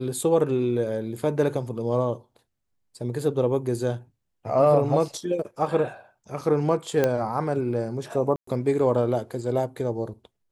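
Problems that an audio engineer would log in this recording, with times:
7.04 pop -9 dBFS
8.36–8.47 gap 0.114 s

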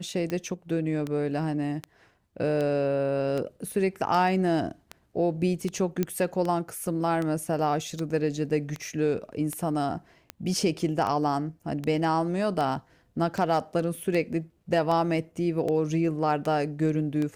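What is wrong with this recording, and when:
tick 78 rpm -18 dBFS
6.03 pop -13 dBFS

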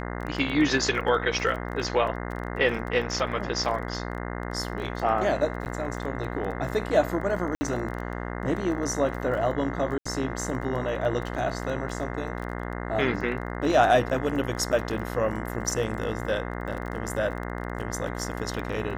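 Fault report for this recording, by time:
buzz 60 Hz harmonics 35 -33 dBFS
crackle 20/s -33 dBFS
5.65–5.66 gap 9.7 ms
7.55–7.61 gap 60 ms
9.98–10.05 gap 75 ms

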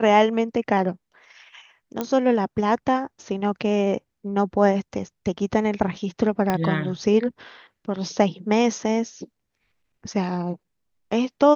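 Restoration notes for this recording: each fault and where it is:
2.01 pop -12 dBFS
6.5 pop -9 dBFS

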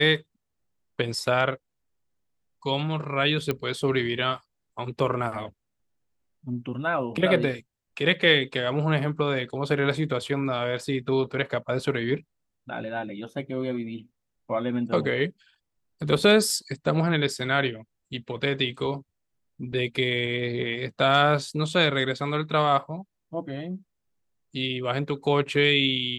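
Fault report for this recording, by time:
3.51 pop -13 dBFS

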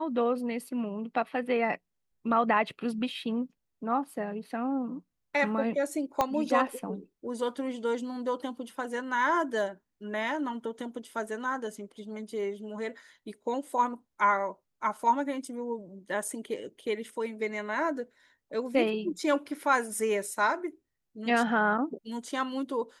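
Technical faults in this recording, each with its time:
6.21 pop -12 dBFS

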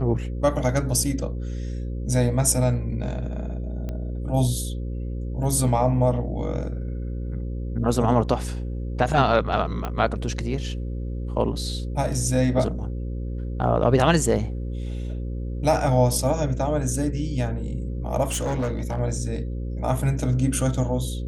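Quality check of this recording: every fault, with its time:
buzz 60 Hz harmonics 9 -29 dBFS
3.89 pop -20 dBFS
9.85 pop -15 dBFS
18.23–19 clipped -21.5 dBFS

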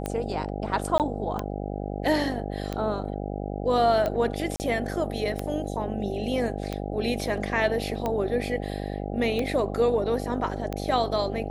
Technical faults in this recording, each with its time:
buzz 50 Hz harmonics 16 -32 dBFS
tick 45 rpm -15 dBFS
0.98–1 gap 18 ms
4.56–4.6 gap 39 ms

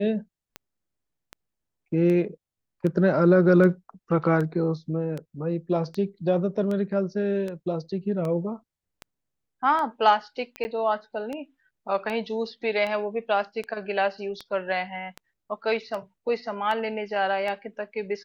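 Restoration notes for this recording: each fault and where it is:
tick 78 rpm -20 dBFS
10.64–10.65 gap 10 ms

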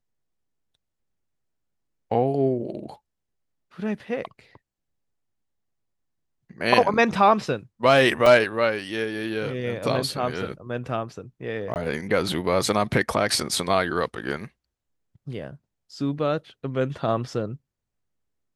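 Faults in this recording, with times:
8.26 gap 3.3 ms
11.74–11.76 gap 19 ms

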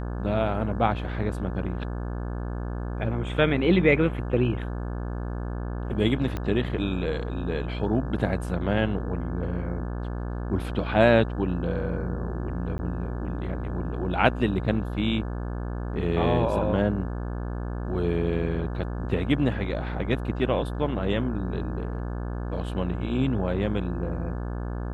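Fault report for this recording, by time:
buzz 60 Hz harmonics 29 -31 dBFS
6.37 pop -17 dBFS
12.78–12.79 gap 10 ms

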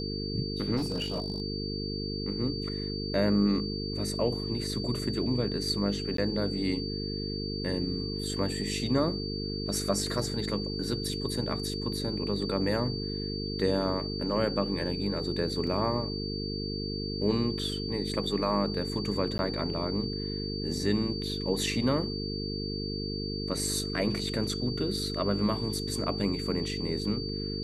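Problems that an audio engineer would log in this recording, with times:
buzz 50 Hz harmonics 9 -35 dBFS
tone 4600 Hz -37 dBFS
0.76–1.42 clipped -26 dBFS
6.17–6.18 gap
15.67 gap 3.2 ms
19.38–19.39 gap 10 ms

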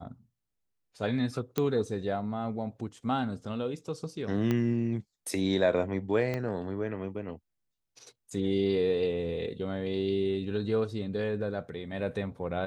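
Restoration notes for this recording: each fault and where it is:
1.58 pop -14 dBFS
4.51 pop -16 dBFS
6.34 pop -20 dBFS

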